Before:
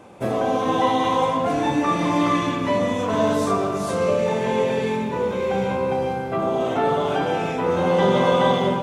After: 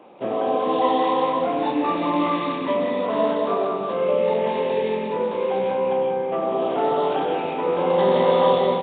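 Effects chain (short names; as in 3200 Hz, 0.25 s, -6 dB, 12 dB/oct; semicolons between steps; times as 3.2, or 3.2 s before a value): HPF 280 Hz 12 dB/oct; bell 1600 Hz -6.5 dB 0.59 oct; feedback echo 0.189 s, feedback 44%, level -8 dB; Nellymoser 16 kbps 8000 Hz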